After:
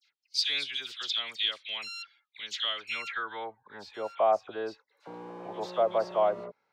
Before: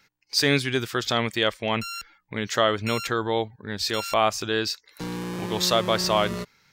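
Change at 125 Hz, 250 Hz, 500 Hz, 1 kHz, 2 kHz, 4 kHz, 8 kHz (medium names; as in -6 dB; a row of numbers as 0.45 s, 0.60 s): under -20 dB, -18.0 dB, -5.0 dB, -6.0 dB, -9.0 dB, -5.0 dB, -15.0 dB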